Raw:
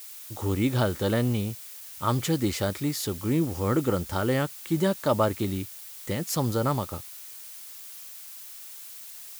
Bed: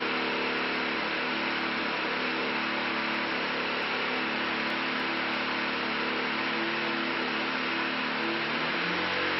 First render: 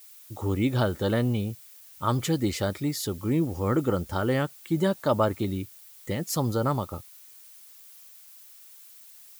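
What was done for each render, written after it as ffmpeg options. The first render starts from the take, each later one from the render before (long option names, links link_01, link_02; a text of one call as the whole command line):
ffmpeg -i in.wav -af "afftdn=noise_reduction=9:noise_floor=-43" out.wav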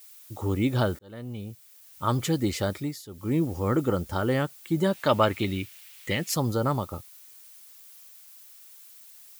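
ffmpeg -i in.wav -filter_complex "[0:a]asettb=1/sr,asplit=3[link_01][link_02][link_03];[link_01]atrim=end=4.934[link_04];[link_02]atrim=start=4.93:end=6.34,asetpts=PTS-STARTPTS,afade=type=in:duration=0.004:curve=qsin,afade=type=out:start_time=1.406:duration=0.004:curve=qsin,equalizer=frequency=2500:width=1:gain=12.5[link_05];[link_03]atrim=start=6.336[link_06];[link_04][link_05]acrossfade=duration=0.004:curve1=hsin:curve2=qsin[link_07];[link_07][link_06]acrossfade=duration=0.004:curve1=qsin:curve2=hsin,asplit=4[link_08][link_09][link_10][link_11];[link_08]atrim=end=0.99,asetpts=PTS-STARTPTS,afade=type=out:start_time=0.986:duration=0.004:curve=hsin[link_12];[link_09]atrim=start=0.99:end=3.04,asetpts=PTS-STARTPTS,afade=type=in:duration=1.09,afade=type=out:start_time=1.77:duration=0.28:silence=0.16788[link_13];[link_10]atrim=start=3.04:end=3.07,asetpts=PTS-STARTPTS,volume=-15.5dB[link_14];[link_11]atrim=start=3.07,asetpts=PTS-STARTPTS,afade=type=in:duration=0.28:silence=0.16788[link_15];[link_12][link_13][link_14][link_15]concat=n=4:v=0:a=1" out.wav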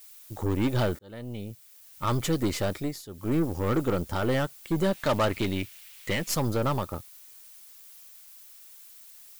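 ffmpeg -i in.wav -af "asoftclip=type=tanh:threshold=-17dB,aeval=exprs='0.141*(cos(1*acos(clip(val(0)/0.141,-1,1)))-cos(1*PI/2))+0.0158*(cos(6*acos(clip(val(0)/0.141,-1,1)))-cos(6*PI/2))':channel_layout=same" out.wav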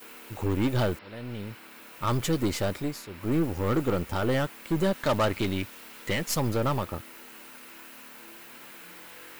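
ffmpeg -i in.wav -i bed.wav -filter_complex "[1:a]volume=-20dB[link_01];[0:a][link_01]amix=inputs=2:normalize=0" out.wav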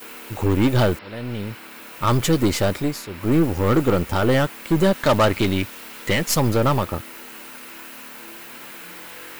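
ffmpeg -i in.wav -af "volume=8dB" out.wav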